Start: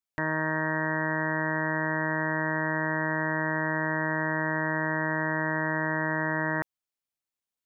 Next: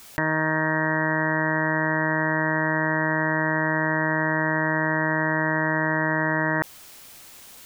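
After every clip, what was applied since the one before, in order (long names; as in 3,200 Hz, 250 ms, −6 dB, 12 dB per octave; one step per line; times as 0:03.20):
envelope flattener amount 100%
level +5 dB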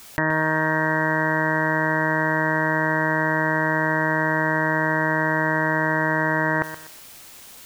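feedback echo at a low word length 123 ms, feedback 35%, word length 7 bits, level −12 dB
level +2 dB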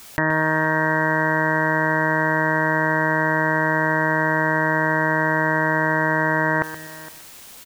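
single-tap delay 463 ms −19 dB
level +1.5 dB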